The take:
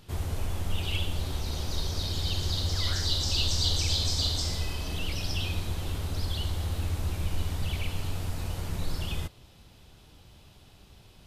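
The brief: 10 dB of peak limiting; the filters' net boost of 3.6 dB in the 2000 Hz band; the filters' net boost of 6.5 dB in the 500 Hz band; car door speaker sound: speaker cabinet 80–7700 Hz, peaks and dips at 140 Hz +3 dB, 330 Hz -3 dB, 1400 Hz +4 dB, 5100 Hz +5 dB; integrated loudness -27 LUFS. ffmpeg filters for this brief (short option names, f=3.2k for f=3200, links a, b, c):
-af "equalizer=f=500:t=o:g=8.5,equalizer=f=2k:t=o:g=3.5,alimiter=limit=-23dB:level=0:latency=1,highpass=80,equalizer=f=140:t=q:w=4:g=3,equalizer=f=330:t=q:w=4:g=-3,equalizer=f=1.4k:t=q:w=4:g=4,equalizer=f=5.1k:t=q:w=4:g=5,lowpass=f=7.7k:w=0.5412,lowpass=f=7.7k:w=1.3066,volume=6dB"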